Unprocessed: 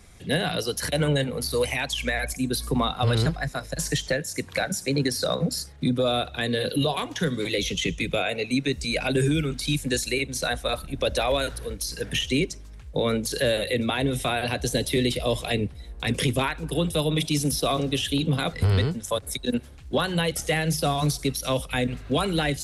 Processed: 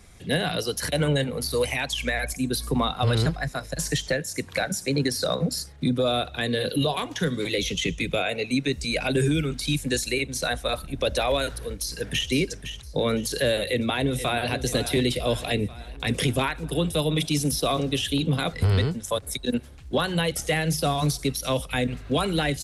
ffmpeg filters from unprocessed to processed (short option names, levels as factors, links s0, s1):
-filter_complex "[0:a]asplit=2[s0][s1];[s1]afade=t=in:st=11.8:d=0.01,afade=t=out:st=12.3:d=0.01,aecho=0:1:510|1020|1530:0.316228|0.0948683|0.0284605[s2];[s0][s2]amix=inputs=2:normalize=0,asplit=2[s3][s4];[s4]afade=t=in:st=13.67:d=0.01,afade=t=out:st=14.52:d=0.01,aecho=0:1:480|960|1440|1920|2400|2880|3360:0.251189|0.150713|0.0904279|0.0542567|0.032554|0.0195324|0.0117195[s5];[s3][s5]amix=inputs=2:normalize=0"